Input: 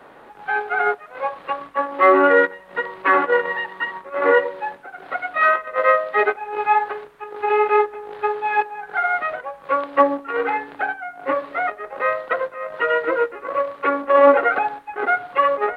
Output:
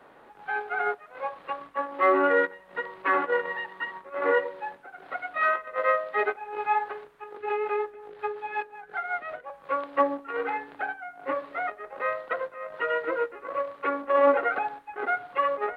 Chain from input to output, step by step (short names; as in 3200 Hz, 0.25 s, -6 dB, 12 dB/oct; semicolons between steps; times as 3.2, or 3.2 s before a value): 7.37–9.5 rotary speaker horn 5.5 Hz; gain -8 dB